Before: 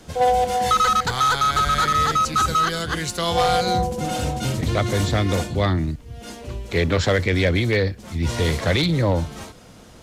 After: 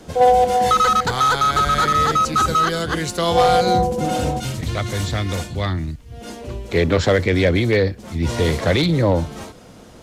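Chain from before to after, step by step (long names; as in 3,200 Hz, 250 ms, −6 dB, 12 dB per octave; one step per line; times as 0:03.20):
parametric band 400 Hz +6 dB 2.7 octaves, from 0:04.40 −5 dB, from 0:06.12 +4.5 dB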